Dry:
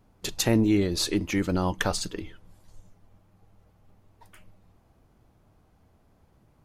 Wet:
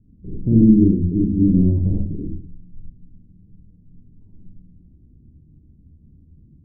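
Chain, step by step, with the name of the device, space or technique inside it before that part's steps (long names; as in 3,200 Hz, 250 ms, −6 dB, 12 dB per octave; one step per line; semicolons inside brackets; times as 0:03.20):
next room (low-pass filter 260 Hz 24 dB per octave; convolution reverb RT60 0.45 s, pre-delay 46 ms, DRR −5 dB)
level +7.5 dB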